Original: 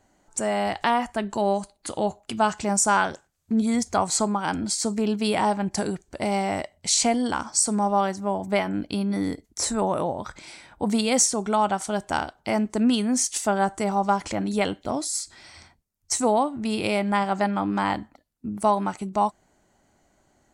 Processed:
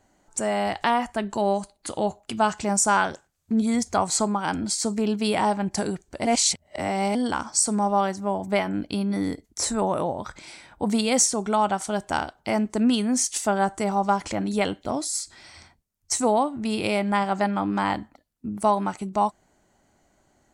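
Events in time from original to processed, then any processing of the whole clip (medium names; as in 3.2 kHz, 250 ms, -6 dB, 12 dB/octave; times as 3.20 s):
6.25–7.15 s: reverse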